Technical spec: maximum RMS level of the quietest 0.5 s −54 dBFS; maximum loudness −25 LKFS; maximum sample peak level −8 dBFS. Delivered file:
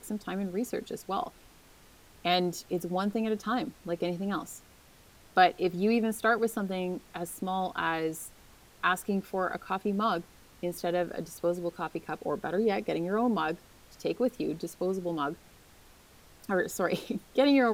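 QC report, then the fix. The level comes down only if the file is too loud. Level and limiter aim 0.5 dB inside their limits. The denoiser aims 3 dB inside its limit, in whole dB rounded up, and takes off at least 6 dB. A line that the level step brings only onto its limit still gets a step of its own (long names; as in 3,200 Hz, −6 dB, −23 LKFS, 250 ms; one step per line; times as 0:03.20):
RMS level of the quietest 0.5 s −57 dBFS: in spec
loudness −31.0 LKFS: in spec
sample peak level −10.5 dBFS: in spec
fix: no processing needed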